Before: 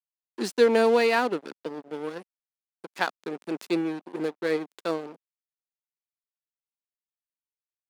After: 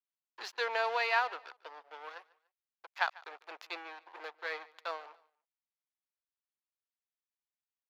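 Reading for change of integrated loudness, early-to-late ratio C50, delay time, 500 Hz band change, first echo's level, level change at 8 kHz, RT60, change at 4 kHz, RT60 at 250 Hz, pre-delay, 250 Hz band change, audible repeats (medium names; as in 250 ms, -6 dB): -9.0 dB, no reverb, 146 ms, -16.5 dB, -22.0 dB, -14.0 dB, no reverb, -6.0 dB, no reverb, no reverb, -33.5 dB, 2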